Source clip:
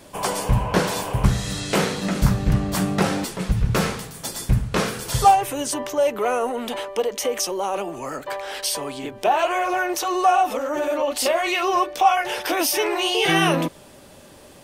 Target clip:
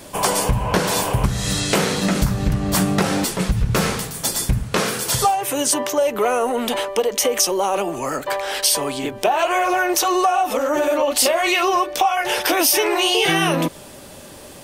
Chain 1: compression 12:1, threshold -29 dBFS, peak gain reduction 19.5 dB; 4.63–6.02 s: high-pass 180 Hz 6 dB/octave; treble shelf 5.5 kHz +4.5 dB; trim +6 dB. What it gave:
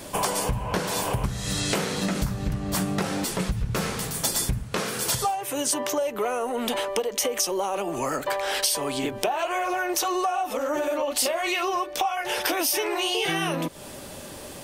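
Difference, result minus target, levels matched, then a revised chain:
compression: peak gain reduction +8 dB
compression 12:1, threshold -20 dBFS, peak gain reduction 11.5 dB; 4.63–6.02 s: high-pass 180 Hz 6 dB/octave; treble shelf 5.5 kHz +4.5 dB; trim +6 dB

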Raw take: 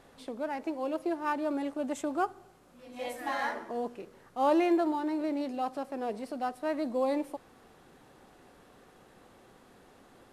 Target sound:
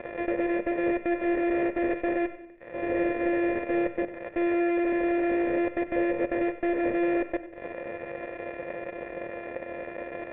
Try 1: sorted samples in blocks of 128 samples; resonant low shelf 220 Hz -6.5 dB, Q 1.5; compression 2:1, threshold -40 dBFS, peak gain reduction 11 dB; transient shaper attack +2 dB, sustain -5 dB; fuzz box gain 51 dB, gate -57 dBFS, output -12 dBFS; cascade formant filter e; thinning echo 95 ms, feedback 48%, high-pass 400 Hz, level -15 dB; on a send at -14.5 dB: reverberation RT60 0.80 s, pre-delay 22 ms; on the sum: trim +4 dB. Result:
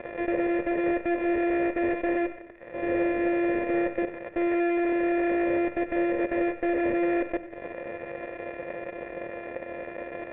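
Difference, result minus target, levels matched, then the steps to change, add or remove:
compression: peak gain reduction -4 dB
change: compression 2:1, threshold -48.5 dBFS, peak gain reduction 15.5 dB

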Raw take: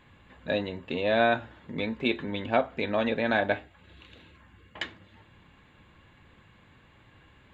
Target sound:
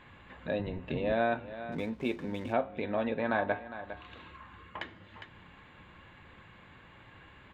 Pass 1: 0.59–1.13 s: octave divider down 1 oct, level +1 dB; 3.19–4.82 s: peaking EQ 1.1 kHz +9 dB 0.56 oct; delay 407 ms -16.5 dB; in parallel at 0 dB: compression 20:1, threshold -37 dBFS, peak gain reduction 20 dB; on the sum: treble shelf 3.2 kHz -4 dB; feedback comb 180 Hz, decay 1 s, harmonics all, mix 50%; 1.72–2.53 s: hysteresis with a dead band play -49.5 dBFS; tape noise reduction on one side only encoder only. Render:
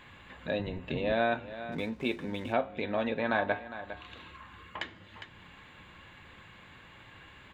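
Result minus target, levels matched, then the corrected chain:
4 kHz band +4.5 dB
0.59–1.13 s: octave divider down 1 oct, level +1 dB; 3.19–4.82 s: peaking EQ 1.1 kHz +9 dB 0.56 oct; delay 407 ms -16.5 dB; in parallel at 0 dB: compression 20:1, threshold -37 dBFS, peak gain reduction 20 dB; on the sum: treble shelf 3.2 kHz -15 dB; feedback comb 180 Hz, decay 1 s, harmonics all, mix 50%; 1.72–2.53 s: hysteresis with a dead band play -49.5 dBFS; tape noise reduction on one side only encoder only

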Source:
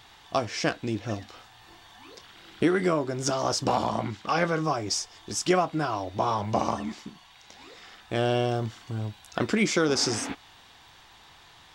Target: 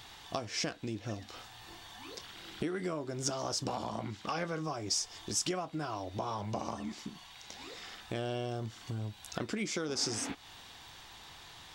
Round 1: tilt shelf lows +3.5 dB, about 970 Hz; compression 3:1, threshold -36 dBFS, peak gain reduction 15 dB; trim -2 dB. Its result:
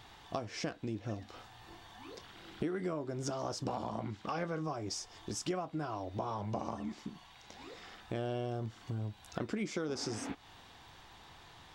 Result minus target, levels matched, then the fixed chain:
4 kHz band -5.5 dB
tilt shelf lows +3.5 dB, about 970 Hz; compression 3:1, threshold -36 dBFS, peak gain reduction 15 dB; treble shelf 2.3 kHz +10 dB; trim -2 dB

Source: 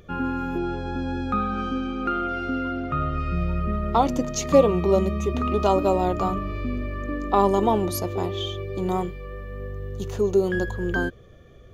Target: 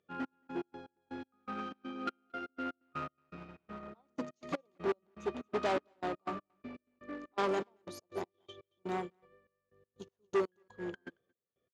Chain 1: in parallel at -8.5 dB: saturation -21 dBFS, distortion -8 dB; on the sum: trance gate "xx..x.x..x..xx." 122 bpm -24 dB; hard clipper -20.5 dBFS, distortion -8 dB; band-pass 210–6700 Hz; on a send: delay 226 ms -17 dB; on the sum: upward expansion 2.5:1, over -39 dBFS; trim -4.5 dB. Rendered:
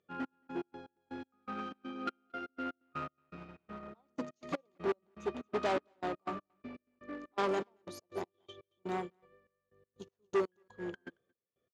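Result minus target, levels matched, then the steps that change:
saturation: distortion +7 dB
change: saturation -13 dBFS, distortion -15 dB

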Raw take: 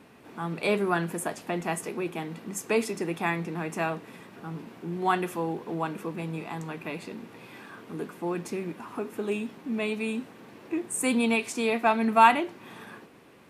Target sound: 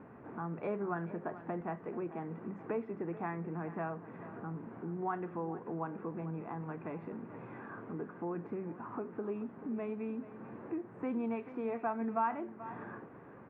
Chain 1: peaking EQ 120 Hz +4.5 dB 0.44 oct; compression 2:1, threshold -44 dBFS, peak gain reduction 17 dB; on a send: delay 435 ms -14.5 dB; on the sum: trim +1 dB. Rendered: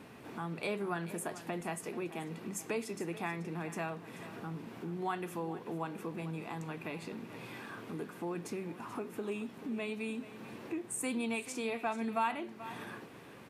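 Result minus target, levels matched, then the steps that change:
2 kHz band +5.5 dB
add first: low-pass 1.6 kHz 24 dB/octave

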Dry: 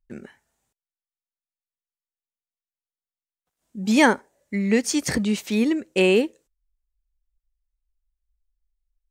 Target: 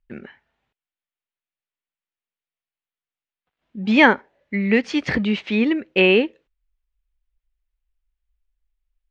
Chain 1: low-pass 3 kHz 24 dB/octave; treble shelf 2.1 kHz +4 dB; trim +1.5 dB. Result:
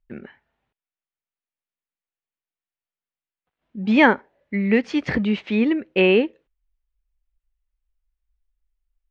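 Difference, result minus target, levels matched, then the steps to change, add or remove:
4 kHz band -3.0 dB
change: treble shelf 2.1 kHz +10.5 dB

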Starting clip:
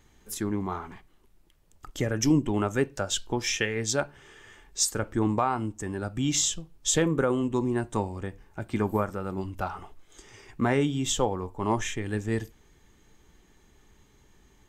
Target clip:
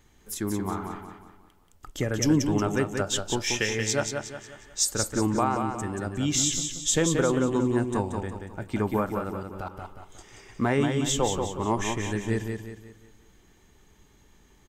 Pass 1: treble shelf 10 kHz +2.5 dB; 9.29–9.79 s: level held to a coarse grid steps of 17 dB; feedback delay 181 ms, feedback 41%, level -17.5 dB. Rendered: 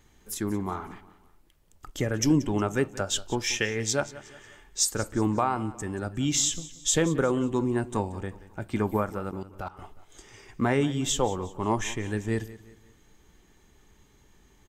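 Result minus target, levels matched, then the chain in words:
echo-to-direct -12 dB
treble shelf 10 kHz +2.5 dB; 9.29–9.79 s: level held to a coarse grid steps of 17 dB; feedback delay 181 ms, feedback 41%, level -5.5 dB

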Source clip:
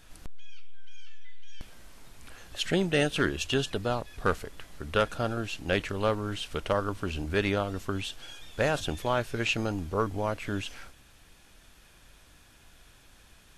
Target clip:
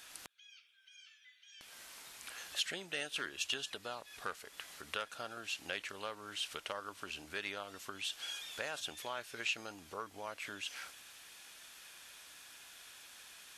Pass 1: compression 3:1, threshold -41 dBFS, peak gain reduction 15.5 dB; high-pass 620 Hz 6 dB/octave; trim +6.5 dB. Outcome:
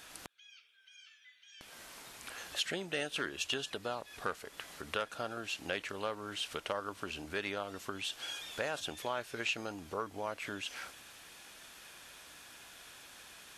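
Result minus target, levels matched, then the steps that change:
500 Hz band +3.5 dB
change: high-pass 1.8 kHz 6 dB/octave

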